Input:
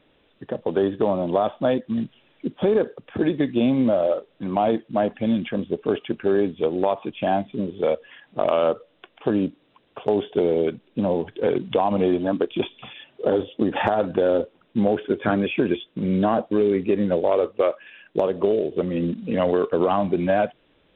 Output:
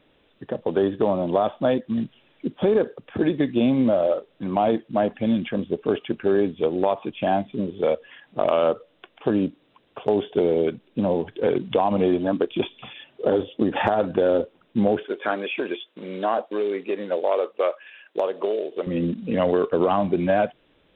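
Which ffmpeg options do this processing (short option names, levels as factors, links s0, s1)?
-filter_complex "[0:a]asettb=1/sr,asplit=3[s0][s1][s2];[s0]atrim=end=15.034[s3];[s1]atrim=start=15.03:end=18.87,asetpts=PTS-STARTPTS,afade=t=in:d=0.004:c=qsin,afade=t=out:st=3.836:d=0.004:c=qsin,highpass=480[s4];[s2]atrim=start=18.866[s5];[s3][s4]acrossfade=d=0.004:c1=hsin:c2=qsin[s6];[s6][s5]acrossfade=d=0.004:c1=qsin:c2=hsin"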